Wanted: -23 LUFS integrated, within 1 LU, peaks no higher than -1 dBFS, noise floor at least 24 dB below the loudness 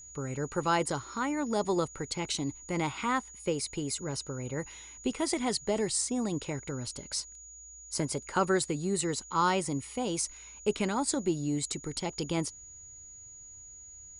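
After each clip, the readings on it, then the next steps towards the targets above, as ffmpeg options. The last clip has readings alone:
steady tone 6800 Hz; tone level -47 dBFS; loudness -32.0 LUFS; peak -15.0 dBFS; loudness target -23.0 LUFS
-> -af "bandreject=f=6.8k:w=30"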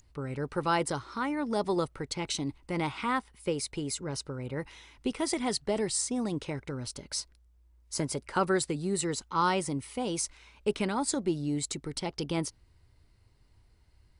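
steady tone none; loudness -32.0 LUFS; peak -15.0 dBFS; loudness target -23.0 LUFS
-> -af "volume=9dB"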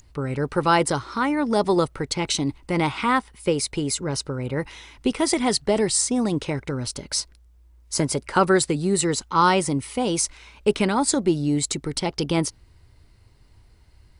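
loudness -23.0 LUFS; peak -6.0 dBFS; noise floor -54 dBFS

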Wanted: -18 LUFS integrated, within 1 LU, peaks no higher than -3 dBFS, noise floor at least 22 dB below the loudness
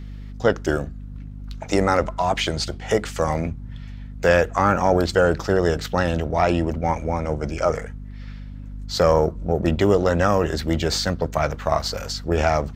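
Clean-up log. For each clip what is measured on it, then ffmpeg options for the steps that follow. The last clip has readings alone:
hum 50 Hz; harmonics up to 250 Hz; hum level -32 dBFS; loudness -21.5 LUFS; peak -5.0 dBFS; loudness target -18.0 LUFS
-> -af "bandreject=f=50:t=h:w=4,bandreject=f=100:t=h:w=4,bandreject=f=150:t=h:w=4,bandreject=f=200:t=h:w=4,bandreject=f=250:t=h:w=4"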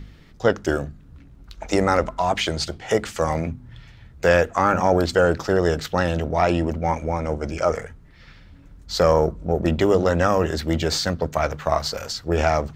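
hum none; loudness -22.0 LUFS; peak -5.5 dBFS; loudness target -18.0 LUFS
-> -af "volume=4dB,alimiter=limit=-3dB:level=0:latency=1"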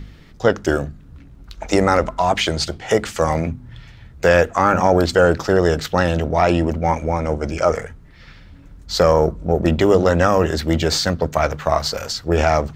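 loudness -18.0 LUFS; peak -3.0 dBFS; noise floor -44 dBFS

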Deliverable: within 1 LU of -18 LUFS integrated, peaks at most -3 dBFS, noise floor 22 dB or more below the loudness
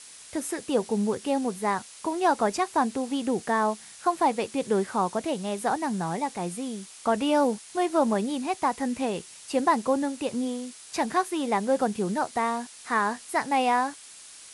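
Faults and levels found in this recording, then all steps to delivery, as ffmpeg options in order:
noise floor -47 dBFS; noise floor target -50 dBFS; loudness -27.5 LUFS; peak -11.5 dBFS; loudness target -18.0 LUFS
-> -af "afftdn=nr=6:nf=-47"
-af "volume=9.5dB,alimiter=limit=-3dB:level=0:latency=1"

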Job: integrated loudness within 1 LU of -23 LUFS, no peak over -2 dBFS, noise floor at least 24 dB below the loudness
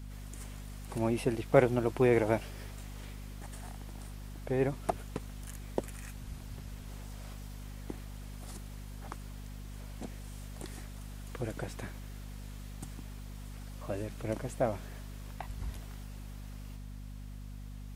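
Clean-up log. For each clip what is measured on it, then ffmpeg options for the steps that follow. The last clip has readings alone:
hum 50 Hz; harmonics up to 250 Hz; hum level -42 dBFS; loudness -37.5 LUFS; peak -9.0 dBFS; loudness target -23.0 LUFS
-> -af "bandreject=f=50:t=h:w=6,bandreject=f=100:t=h:w=6,bandreject=f=150:t=h:w=6,bandreject=f=200:t=h:w=6,bandreject=f=250:t=h:w=6"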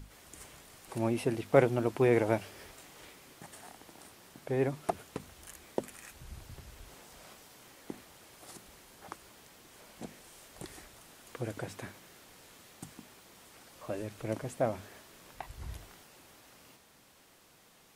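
hum none; loudness -33.0 LUFS; peak -10.0 dBFS; loudness target -23.0 LUFS
-> -af "volume=10dB,alimiter=limit=-2dB:level=0:latency=1"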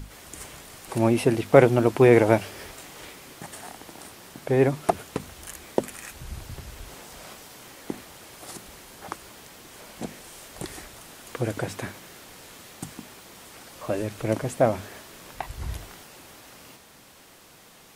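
loudness -23.5 LUFS; peak -2.0 dBFS; noise floor -52 dBFS

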